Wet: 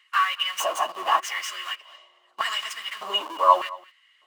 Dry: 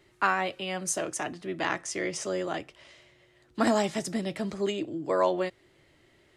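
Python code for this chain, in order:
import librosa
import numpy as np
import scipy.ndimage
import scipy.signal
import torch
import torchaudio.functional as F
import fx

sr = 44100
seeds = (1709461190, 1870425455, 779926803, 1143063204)

p1 = fx.tracing_dist(x, sr, depth_ms=0.043)
p2 = fx.stretch_vocoder_free(p1, sr, factor=0.67)
p3 = fx.schmitt(p2, sr, flips_db=-43.0)
p4 = p2 + (p3 * librosa.db_to_amplitude(-5.0))
p5 = fx.filter_lfo_highpass(p4, sr, shape='square', hz=0.83, low_hz=720.0, high_hz=1900.0, q=2.4)
p6 = fx.small_body(p5, sr, hz=(1100.0, 2900.0), ring_ms=30, db=18)
y = p6 + fx.echo_single(p6, sr, ms=223, db=-21.0, dry=0)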